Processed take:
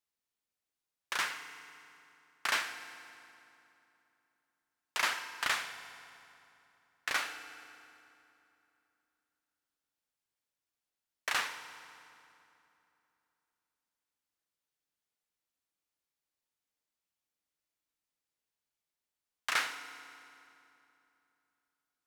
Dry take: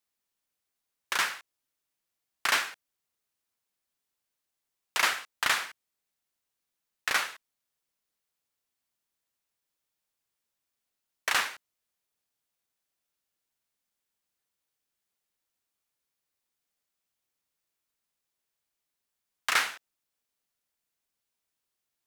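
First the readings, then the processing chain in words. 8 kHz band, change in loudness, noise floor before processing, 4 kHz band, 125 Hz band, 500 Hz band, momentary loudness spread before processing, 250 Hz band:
-6.5 dB, -6.0 dB, -85 dBFS, -5.5 dB, no reading, -5.0 dB, 11 LU, -4.0 dB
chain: treble shelf 11 kHz -5 dB; FDN reverb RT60 2.9 s, low-frequency decay 1.2×, high-frequency decay 0.75×, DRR 8.5 dB; trim -5.5 dB

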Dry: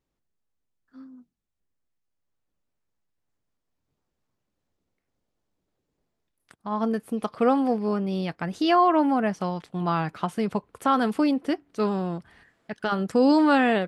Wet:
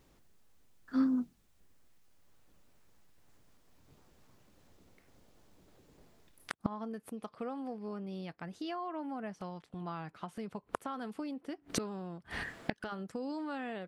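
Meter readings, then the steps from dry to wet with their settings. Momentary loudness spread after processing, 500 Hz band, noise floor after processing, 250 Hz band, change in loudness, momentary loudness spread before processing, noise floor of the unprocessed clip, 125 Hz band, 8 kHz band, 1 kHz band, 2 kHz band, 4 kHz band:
8 LU, -17.0 dB, -69 dBFS, -13.0 dB, -15.0 dB, 12 LU, -81 dBFS, -13.0 dB, no reading, -18.0 dB, -12.5 dB, -12.5 dB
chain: compression, threshold -23 dBFS, peak gain reduction 8 dB; inverted gate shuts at -33 dBFS, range -30 dB; trim +16.5 dB

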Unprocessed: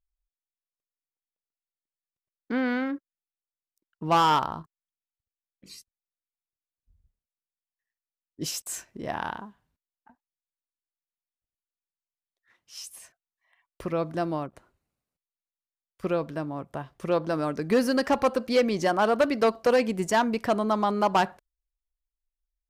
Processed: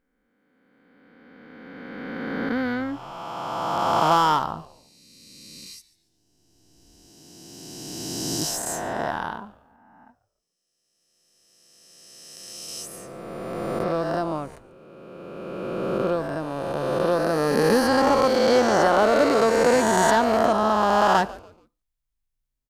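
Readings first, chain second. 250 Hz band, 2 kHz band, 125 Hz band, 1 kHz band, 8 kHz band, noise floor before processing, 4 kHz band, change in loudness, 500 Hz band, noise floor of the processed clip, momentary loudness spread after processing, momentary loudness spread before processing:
+3.0 dB, +5.5 dB, +4.0 dB, +5.5 dB, +8.5 dB, under -85 dBFS, +5.5 dB, +4.0 dB, +5.5 dB, -78 dBFS, 20 LU, 16 LU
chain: reverse spectral sustain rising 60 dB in 2.86 s; dynamic bell 2.5 kHz, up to -7 dB, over -45 dBFS, Q 2.6; on a send: frequency-shifting echo 143 ms, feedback 33%, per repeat -140 Hz, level -19.5 dB

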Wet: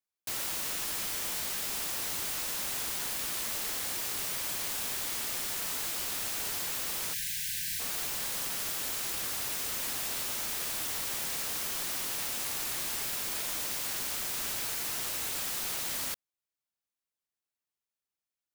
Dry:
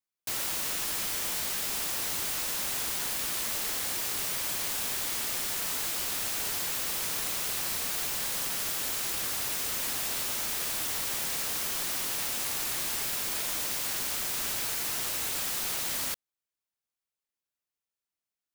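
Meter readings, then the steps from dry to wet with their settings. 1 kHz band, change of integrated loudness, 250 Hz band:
-2.5 dB, -2.5 dB, -2.5 dB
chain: spectral selection erased 7.13–7.80 s, 200–1500 Hz; trim -2.5 dB

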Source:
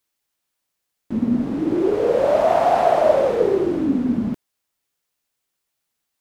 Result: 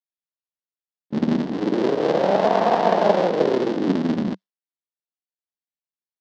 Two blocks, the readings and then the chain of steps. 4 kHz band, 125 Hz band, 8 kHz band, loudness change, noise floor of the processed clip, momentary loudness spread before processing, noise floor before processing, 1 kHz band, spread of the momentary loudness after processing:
+5.0 dB, +2.0 dB, no reading, -1.5 dB, under -85 dBFS, 8 LU, -78 dBFS, -1.0 dB, 7 LU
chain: cycle switcher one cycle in 3, muted; gate with hold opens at -20 dBFS; cabinet simulation 170–5000 Hz, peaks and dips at 190 Hz +7 dB, 1.3 kHz -4 dB, 2.4 kHz -5 dB

